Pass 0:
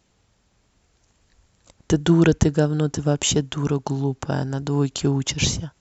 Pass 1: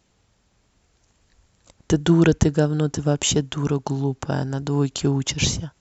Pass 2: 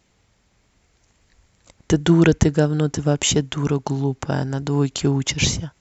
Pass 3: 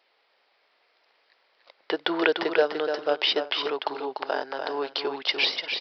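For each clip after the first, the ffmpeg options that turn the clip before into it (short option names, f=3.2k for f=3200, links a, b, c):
-af anull
-af "equalizer=f=2.1k:w=3.8:g=5,volume=1.5dB"
-filter_complex "[0:a]highpass=f=470:w=0.5412,highpass=f=470:w=1.3066,asplit=2[a][b];[b]aecho=0:1:295|351:0.501|0.119[c];[a][c]amix=inputs=2:normalize=0,aresample=11025,aresample=44100"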